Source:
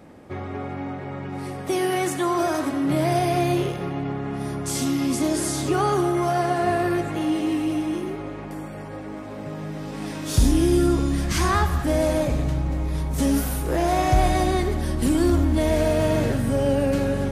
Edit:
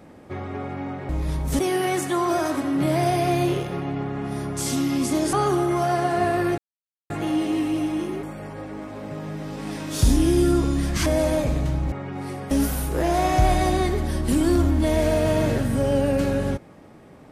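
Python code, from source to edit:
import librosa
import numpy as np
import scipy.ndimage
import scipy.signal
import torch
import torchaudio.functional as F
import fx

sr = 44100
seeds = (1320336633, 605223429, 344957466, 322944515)

y = fx.edit(x, sr, fx.swap(start_s=1.09, length_s=0.59, other_s=12.75, other_length_s=0.5),
    fx.cut(start_s=5.42, length_s=0.37),
    fx.insert_silence(at_s=7.04, length_s=0.52),
    fx.cut(start_s=8.17, length_s=0.41),
    fx.cut(start_s=11.41, length_s=0.48), tone=tone)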